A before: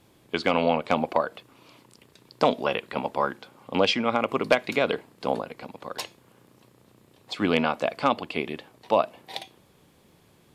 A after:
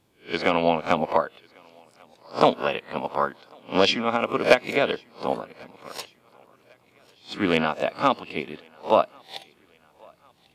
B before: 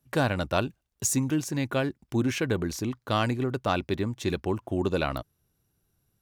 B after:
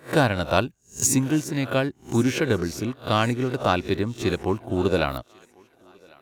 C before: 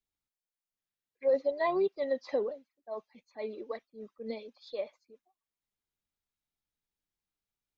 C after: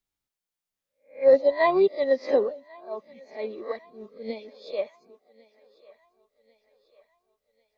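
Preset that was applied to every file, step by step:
spectral swells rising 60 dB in 0.33 s; thinning echo 1.096 s, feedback 54%, high-pass 350 Hz, level -20 dB; upward expander 1.5:1, over -38 dBFS; match loudness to -24 LUFS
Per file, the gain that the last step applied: +3.5, +5.5, +10.0 dB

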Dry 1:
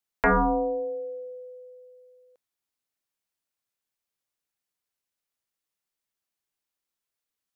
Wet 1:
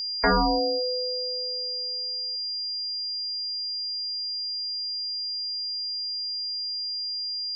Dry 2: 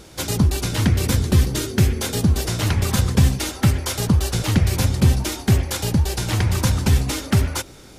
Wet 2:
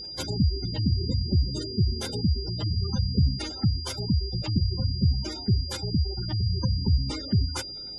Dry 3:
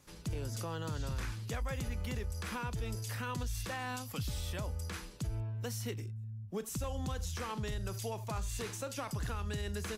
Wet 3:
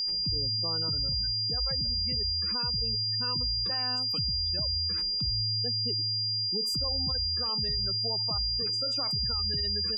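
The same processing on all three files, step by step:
spectral gate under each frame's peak -15 dB strong; vocal rider within 3 dB 2 s; whine 4800 Hz -29 dBFS; match loudness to -27 LUFS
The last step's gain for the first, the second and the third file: +0.5, -7.0, +1.5 dB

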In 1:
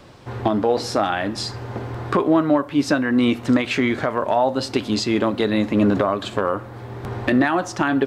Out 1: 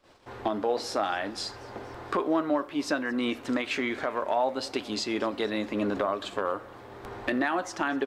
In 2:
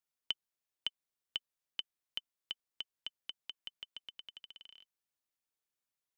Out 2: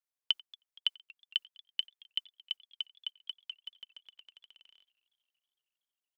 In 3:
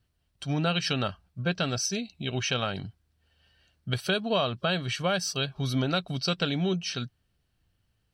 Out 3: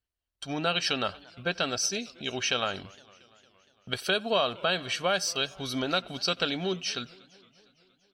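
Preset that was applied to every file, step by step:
gate -45 dBFS, range -14 dB; bell 130 Hz -14.5 dB 1.4 oct; speakerphone echo 90 ms, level -24 dB; warbling echo 0.231 s, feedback 65%, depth 215 cents, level -24 dB; normalise peaks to -12 dBFS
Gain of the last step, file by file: -6.5, +8.5, +1.5 dB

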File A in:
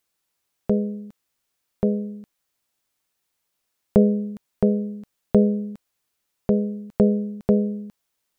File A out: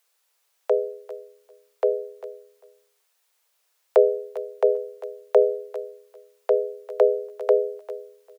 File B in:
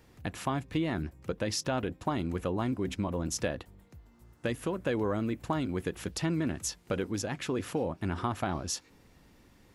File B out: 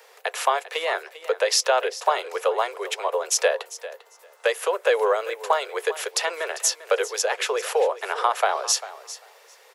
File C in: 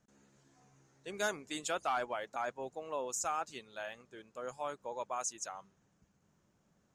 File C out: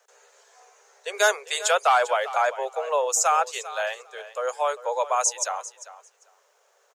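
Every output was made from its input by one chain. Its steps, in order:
steep high-pass 420 Hz 96 dB/oct; feedback echo 0.397 s, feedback 15%, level -15.5 dB; match loudness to -24 LUFS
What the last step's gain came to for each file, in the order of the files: +6.5, +13.0, +15.0 dB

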